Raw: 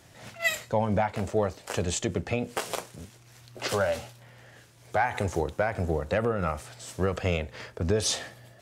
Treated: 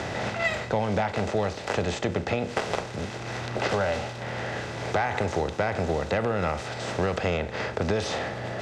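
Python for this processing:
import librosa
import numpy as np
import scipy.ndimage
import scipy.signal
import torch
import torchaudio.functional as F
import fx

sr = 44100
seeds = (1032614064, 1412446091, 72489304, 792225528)

y = fx.bin_compress(x, sr, power=0.6)
y = scipy.signal.sosfilt(scipy.signal.butter(2, 4600.0, 'lowpass', fs=sr, output='sos'), y)
y = fx.band_squash(y, sr, depth_pct=70)
y = F.gain(torch.from_numpy(y), -2.5).numpy()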